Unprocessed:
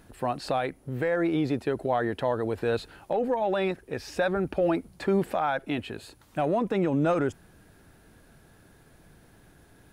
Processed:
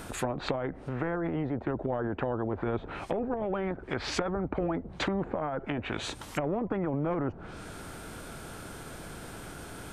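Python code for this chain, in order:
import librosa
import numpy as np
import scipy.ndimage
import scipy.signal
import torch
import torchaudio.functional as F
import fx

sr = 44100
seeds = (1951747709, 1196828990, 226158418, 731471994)

y = fx.formant_shift(x, sr, semitones=-2)
y = fx.env_lowpass_down(y, sr, base_hz=570.0, full_db=-26.0)
y = fx.spectral_comp(y, sr, ratio=2.0)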